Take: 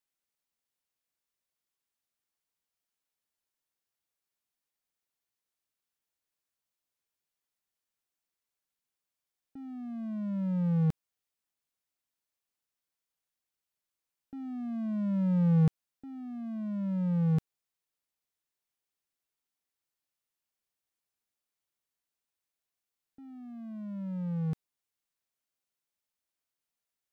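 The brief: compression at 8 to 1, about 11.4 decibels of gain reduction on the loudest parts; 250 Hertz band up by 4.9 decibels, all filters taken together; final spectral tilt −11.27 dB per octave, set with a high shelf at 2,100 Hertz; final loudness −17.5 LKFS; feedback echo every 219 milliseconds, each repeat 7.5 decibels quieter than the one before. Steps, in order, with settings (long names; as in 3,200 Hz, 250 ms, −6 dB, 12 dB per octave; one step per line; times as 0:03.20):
parametric band 250 Hz +8 dB
high-shelf EQ 2,100 Hz +8 dB
downward compressor 8 to 1, threshold −30 dBFS
repeating echo 219 ms, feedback 42%, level −7.5 dB
level +16.5 dB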